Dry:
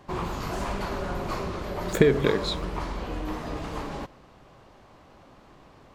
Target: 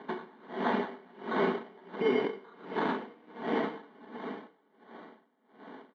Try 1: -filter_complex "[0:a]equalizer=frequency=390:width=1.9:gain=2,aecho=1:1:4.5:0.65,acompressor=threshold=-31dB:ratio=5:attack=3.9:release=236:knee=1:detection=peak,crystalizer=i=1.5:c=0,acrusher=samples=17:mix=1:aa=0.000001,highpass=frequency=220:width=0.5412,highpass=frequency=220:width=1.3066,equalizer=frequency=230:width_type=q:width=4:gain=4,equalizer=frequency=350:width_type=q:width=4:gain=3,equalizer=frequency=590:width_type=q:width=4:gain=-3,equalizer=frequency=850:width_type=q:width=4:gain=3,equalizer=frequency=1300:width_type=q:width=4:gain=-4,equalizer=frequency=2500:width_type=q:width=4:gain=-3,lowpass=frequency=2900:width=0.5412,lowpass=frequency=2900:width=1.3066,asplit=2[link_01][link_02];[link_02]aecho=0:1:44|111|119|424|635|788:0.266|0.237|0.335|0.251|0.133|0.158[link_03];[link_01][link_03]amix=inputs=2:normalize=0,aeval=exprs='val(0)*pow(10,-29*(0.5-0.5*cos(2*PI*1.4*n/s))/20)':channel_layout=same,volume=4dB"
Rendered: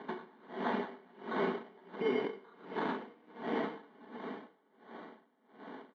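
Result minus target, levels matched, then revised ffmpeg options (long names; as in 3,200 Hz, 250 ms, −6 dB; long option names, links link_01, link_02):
downward compressor: peak gain reduction +5 dB
-filter_complex "[0:a]equalizer=frequency=390:width=1.9:gain=2,aecho=1:1:4.5:0.65,acompressor=threshold=-25dB:ratio=5:attack=3.9:release=236:knee=1:detection=peak,crystalizer=i=1.5:c=0,acrusher=samples=17:mix=1:aa=0.000001,highpass=frequency=220:width=0.5412,highpass=frequency=220:width=1.3066,equalizer=frequency=230:width_type=q:width=4:gain=4,equalizer=frequency=350:width_type=q:width=4:gain=3,equalizer=frequency=590:width_type=q:width=4:gain=-3,equalizer=frequency=850:width_type=q:width=4:gain=3,equalizer=frequency=1300:width_type=q:width=4:gain=-4,equalizer=frequency=2500:width_type=q:width=4:gain=-3,lowpass=frequency=2900:width=0.5412,lowpass=frequency=2900:width=1.3066,asplit=2[link_01][link_02];[link_02]aecho=0:1:44|111|119|424|635|788:0.266|0.237|0.335|0.251|0.133|0.158[link_03];[link_01][link_03]amix=inputs=2:normalize=0,aeval=exprs='val(0)*pow(10,-29*(0.5-0.5*cos(2*PI*1.4*n/s))/20)':channel_layout=same,volume=4dB"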